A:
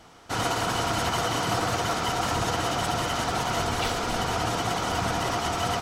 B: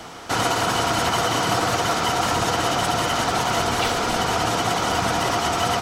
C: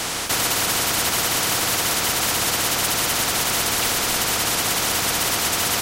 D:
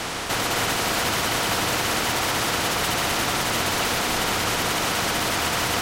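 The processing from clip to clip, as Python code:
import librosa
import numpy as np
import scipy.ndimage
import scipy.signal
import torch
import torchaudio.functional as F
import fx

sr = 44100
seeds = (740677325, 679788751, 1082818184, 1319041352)

y1 = fx.low_shelf(x, sr, hz=96.0, db=-8.0)
y1 = fx.band_squash(y1, sr, depth_pct=40)
y1 = y1 * 10.0 ** (5.5 / 20.0)
y2 = fx.spectral_comp(y1, sr, ratio=4.0)
y3 = fx.reverse_delay(y2, sr, ms=260, wet_db=-3.5)
y3 = fx.quant_dither(y3, sr, seeds[0], bits=8, dither='none')
y3 = fx.high_shelf(y3, sr, hz=4900.0, db=-11.5)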